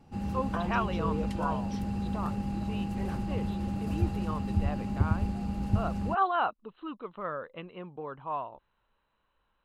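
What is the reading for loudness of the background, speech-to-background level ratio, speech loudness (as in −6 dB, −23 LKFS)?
−32.5 LKFS, −4.0 dB, −36.5 LKFS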